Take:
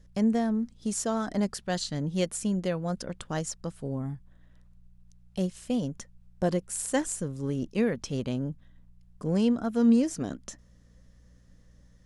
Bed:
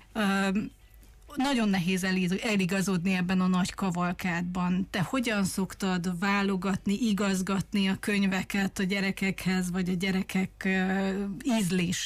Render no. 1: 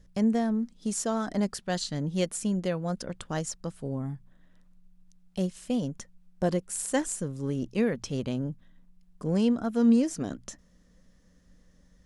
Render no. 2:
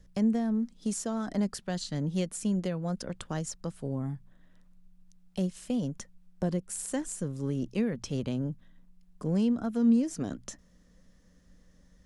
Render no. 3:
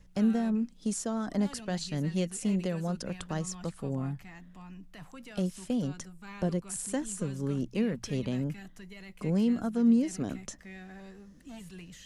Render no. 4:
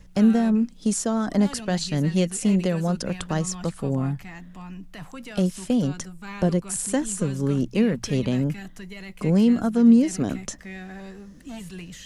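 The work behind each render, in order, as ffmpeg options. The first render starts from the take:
-af "bandreject=f=60:t=h:w=4,bandreject=f=120:t=h:w=4"
-filter_complex "[0:a]acrossover=split=270[a][b];[b]acompressor=threshold=-34dB:ratio=4[c];[a][c]amix=inputs=2:normalize=0"
-filter_complex "[1:a]volume=-19.5dB[a];[0:a][a]amix=inputs=2:normalize=0"
-af "volume=8.5dB"

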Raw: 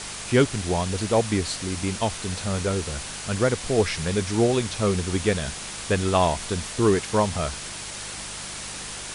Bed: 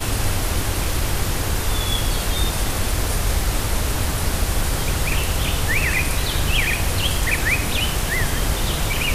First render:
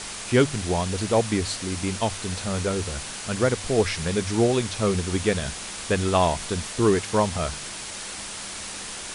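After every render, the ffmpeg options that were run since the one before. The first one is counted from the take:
-af "bandreject=f=50:t=h:w=4,bandreject=f=100:t=h:w=4,bandreject=f=150:t=h:w=4"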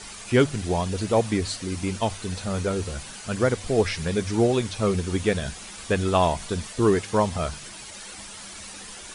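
-af "afftdn=nr=9:nf=-36"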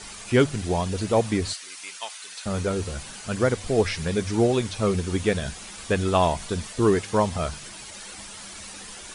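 -filter_complex "[0:a]asettb=1/sr,asplit=3[a][b][c];[a]atrim=end=1.534[d];[b]atrim=start=1.53:end=2.46,asetpts=PTS-STARTPTS,afade=t=in:d=0.004:c=qsin,afade=t=out:st=0.926:d=0.004:c=qsin,highpass=1.4k[e];[c]atrim=start=2.456[f];[d][e]acrossfade=d=0.004:c1=hsin:c2=qsin[g];[g][f]acrossfade=d=0.004:c1=qsin:c2=hsin"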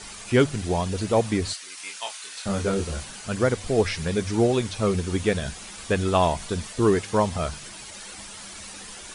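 -filter_complex "[0:a]asettb=1/sr,asplit=3[a][b][c];[a]atrim=end=1.754[d];[b]atrim=start=1.75:end=3.05,asetpts=PTS-STARTPTS,afade=t=in:d=0.004:c=qsin,afade=t=out:st=1.296:d=0.004:c=qsin,asplit=2[e][f];[f]adelay=25,volume=-4dB[g];[e][g]amix=inputs=2:normalize=0,atrim=end_sample=57330[h];[c]atrim=start=3.046[i];[d][h]acrossfade=d=0.004:c1=hsin:c2=qsin[j];[j][i]acrossfade=d=0.004:c1=qsin:c2=hsin"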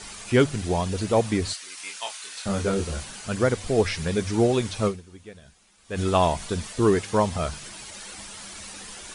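-filter_complex "[0:a]asplit=3[a][b][c];[a]atrim=end=5.37,asetpts=PTS-STARTPTS,afade=t=out:st=4.87:d=0.5:c=exp:silence=0.0944061[d];[b]atrim=start=5.37:end=5.49,asetpts=PTS-STARTPTS,volume=-20.5dB[e];[c]atrim=start=5.49,asetpts=PTS-STARTPTS,afade=t=in:d=0.5:c=exp:silence=0.0944061[f];[d][e][f]concat=n=3:v=0:a=1"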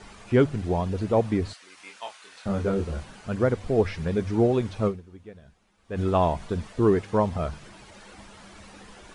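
-af "lowpass=f=1.1k:p=1"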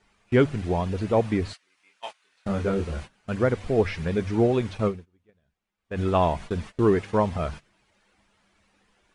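-af "agate=range=-20dB:threshold=-37dB:ratio=16:detection=peak,equalizer=f=2.3k:t=o:w=1.3:g=4.5"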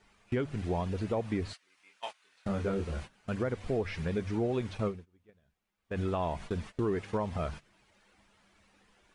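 -af "alimiter=limit=-15dB:level=0:latency=1:release=182,acompressor=threshold=-40dB:ratio=1.5"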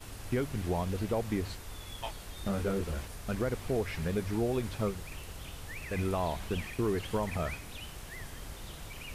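-filter_complex "[1:a]volume=-23dB[a];[0:a][a]amix=inputs=2:normalize=0"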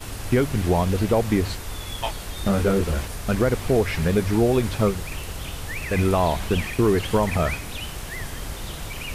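-af "volume=11.5dB"

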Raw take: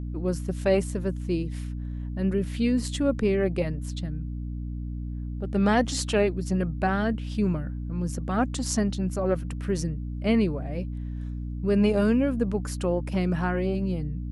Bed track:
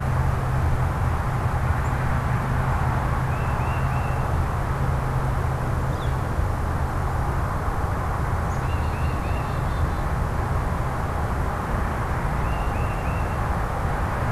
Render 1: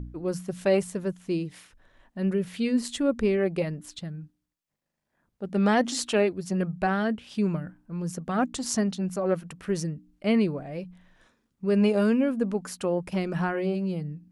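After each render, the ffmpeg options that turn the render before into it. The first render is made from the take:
-af "bandreject=f=60:t=h:w=4,bandreject=f=120:t=h:w=4,bandreject=f=180:t=h:w=4,bandreject=f=240:t=h:w=4,bandreject=f=300:t=h:w=4"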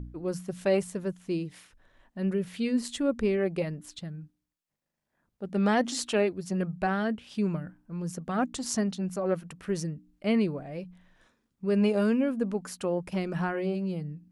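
-af "volume=-2.5dB"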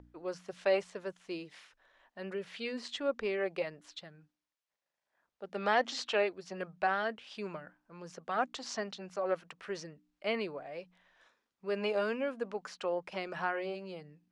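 -filter_complex "[0:a]acrossover=split=5900[a][b];[b]acompressor=threshold=-58dB:ratio=4:attack=1:release=60[c];[a][c]amix=inputs=2:normalize=0,acrossover=split=450 7100:gain=0.1 1 0.126[d][e][f];[d][e][f]amix=inputs=3:normalize=0"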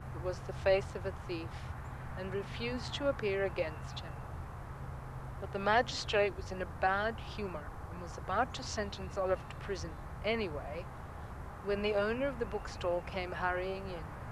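-filter_complex "[1:a]volume=-20.5dB[a];[0:a][a]amix=inputs=2:normalize=0"

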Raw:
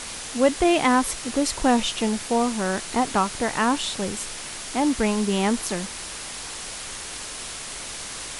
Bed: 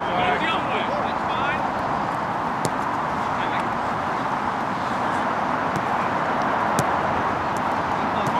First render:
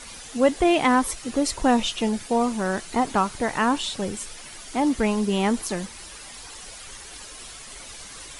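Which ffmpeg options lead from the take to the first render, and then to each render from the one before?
-af "afftdn=nr=10:nf=-35"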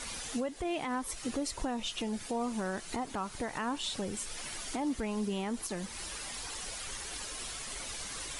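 -af "acompressor=threshold=-35dB:ratio=2,alimiter=level_in=1dB:limit=-24dB:level=0:latency=1:release=187,volume=-1dB"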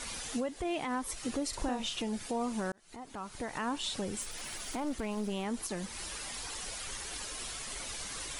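-filter_complex "[0:a]asettb=1/sr,asplit=3[a][b][c];[a]atrim=end=1.494[d];[b]atrim=start=1.49:end=2,asetpts=PTS-STARTPTS,afade=t=in:d=0.004:c=qsin,afade=t=out:st=0.506:d=0.004:c=qsin,asplit=2[e][f];[f]adelay=40,volume=-5.5dB[g];[e][g]amix=inputs=2:normalize=0,atrim=end_sample=22491[h];[c]atrim=start=1.996[i];[d][h]acrossfade=d=0.004:c1=hsin:c2=qsin[j];[j][i]acrossfade=d=0.004:c1=qsin:c2=hsin,asettb=1/sr,asplit=3[k][l][m];[k]atrim=end=4.214[n];[l]atrim=start=4.21:end=5.45,asetpts=PTS-STARTPTS,afade=t=in:d=0.004:c=qsin,afade=t=out:st=1.236:d=0.004:c=qsin,aeval=exprs='clip(val(0),-1,0.0119)':c=same[o];[m]atrim=start=5.446[p];[n][o]acrossfade=d=0.004:c1=hsin:c2=qsin[q];[q][p]acrossfade=d=0.004:c1=qsin:c2=hsin,asplit=2[r][s];[r]atrim=end=2.72,asetpts=PTS-STARTPTS,afade=t=out:st=2.716:d=0.004:c=hsin[t];[s]atrim=start=2.72,asetpts=PTS-STARTPTS,afade=t=in:d=0.92[u];[t][u]concat=n=2:v=0:a=1"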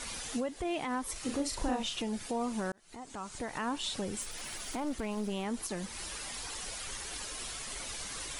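-filter_complex "[0:a]asettb=1/sr,asplit=3[a][b][c];[a]atrim=end=1.124[d];[b]atrim=start=1.12:end=1.83,asetpts=PTS-STARTPTS,afade=t=in:d=0.004:c=qsin,afade=t=out:st=0.706:d=0.004:c=qsin,asplit=2[e][f];[f]adelay=36,volume=-6dB[g];[e][g]amix=inputs=2:normalize=0,atrim=end_sample=31311[h];[c]atrim=start=1.826[i];[d][h]acrossfade=d=0.004:c1=hsin:c2=qsin[j];[j][i]acrossfade=d=0.004:c1=qsin:c2=hsin,asettb=1/sr,asplit=3[k][l][m];[k]atrim=end=2.964[n];[l]atrim=start=2.96:end=3.39,asetpts=PTS-STARTPTS,afade=t=in:d=0.004:c=qsin,afade=t=out:st=0.426:d=0.004:c=qsin,lowpass=f=7.9k:t=q:w=2.6[o];[m]atrim=start=3.386[p];[n][o]acrossfade=d=0.004:c1=hsin:c2=qsin[q];[q][p]acrossfade=d=0.004:c1=qsin:c2=hsin"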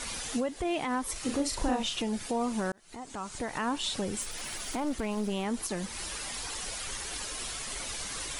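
-af "volume=3.5dB"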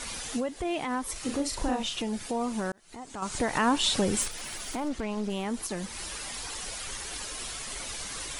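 -filter_complex "[0:a]asettb=1/sr,asplit=3[a][b][c];[a]atrim=end=3.224[d];[b]atrim=start=3.22:end=4.28,asetpts=PTS-STARTPTS,afade=t=in:d=0.004:c=qsin,afade=t=out:st=1.056:d=0.004:c=qsin,acontrast=77[e];[c]atrim=start=4.276[f];[d][e]acrossfade=d=0.004:c1=hsin:c2=qsin[g];[g][f]acrossfade=d=0.004:c1=qsin:c2=hsin,asettb=1/sr,asplit=3[h][i][j];[h]atrim=end=4.884[k];[i]atrim=start=4.88:end=5.3,asetpts=PTS-STARTPTS,afade=t=in:d=0.004:c=qsin,afade=t=out:st=0.416:d=0.004:c=qsin,lowpass=7.1k[l];[j]atrim=start=5.296[m];[k][l]acrossfade=d=0.004:c1=hsin:c2=qsin[n];[n][m]acrossfade=d=0.004:c1=qsin:c2=hsin"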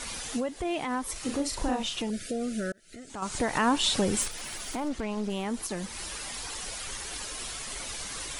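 -filter_complex "[0:a]asettb=1/sr,asplit=3[a][b][c];[a]atrim=end=2.104[d];[b]atrim=start=2.1:end=3.1,asetpts=PTS-STARTPTS,afade=t=in:d=0.004:c=qsin,afade=t=out:st=0.996:d=0.004:c=qsin,asuperstop=centerf=940:order=12:qfactor=1.5[e];[c]atrim=start=3.096[f];[d][e]acrossfade=d=0.004:c1=hsin:c2=qsin[g];[g][f]acrossfade=d=0.004:c1=qsin:c2=hsin"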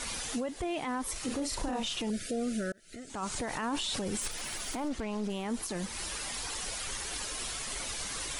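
-af "alimiter=level_in=1.5dB:limit=-24dB:level=0:latency=1:release=23,volume=-1.5dB"

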